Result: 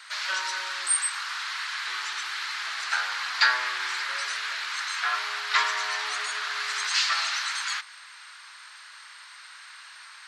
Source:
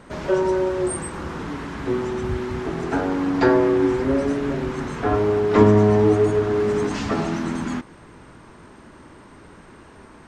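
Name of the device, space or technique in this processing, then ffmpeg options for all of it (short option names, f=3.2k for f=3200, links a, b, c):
headphones lying on a table: -af "highpass=f=1.4k:w=0.5412,highpass=f=1.4k:w=1.3066,equalizer=f=4.3k:t=o:w=0.57:g=10,volume=7dB"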